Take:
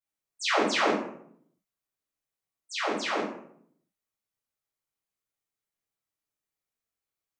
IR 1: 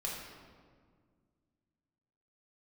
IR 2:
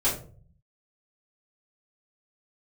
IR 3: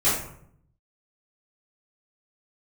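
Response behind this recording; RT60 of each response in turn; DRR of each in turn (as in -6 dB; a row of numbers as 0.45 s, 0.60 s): 3; 1.8 s, 0.45 s, 0.65 s; -4.0 dB, -10.0 dB, -13.5 dB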